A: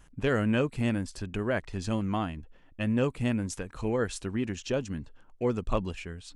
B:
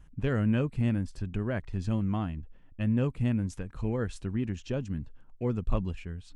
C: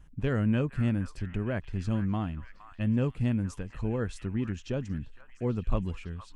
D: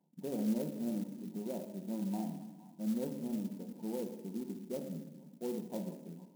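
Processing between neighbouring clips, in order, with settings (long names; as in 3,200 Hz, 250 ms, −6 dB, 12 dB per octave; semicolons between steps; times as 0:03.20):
bass and treble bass +10 dB, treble −5 dB; level −6 dB
echo through a band-pass that steps 465 ms, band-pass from 1,400 Hz, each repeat 0.7 octaves, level −8.5 dB
linear-phase brick-wall band-pass 160–1,000 Hz; rectangular room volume 530 cubic metres, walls mixed, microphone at 0.92 metres; converter with an unsteady clock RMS 0.057 ms; level −7.5 dB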